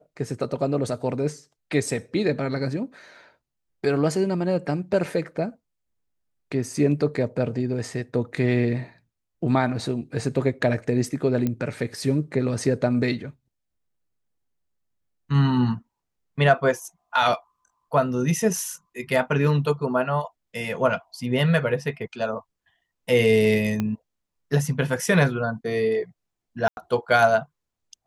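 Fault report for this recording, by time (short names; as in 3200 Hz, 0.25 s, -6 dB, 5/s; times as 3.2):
11.47 pop -13 dBFS
23.8 pop -13 dBFS
26.68–26.77 gap 91 ms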